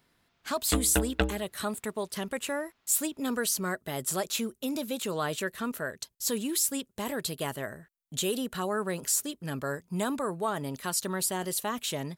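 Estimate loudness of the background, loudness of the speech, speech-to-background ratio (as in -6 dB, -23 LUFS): -31.5 LUFS, -31.0 LUFS, 0.5 dB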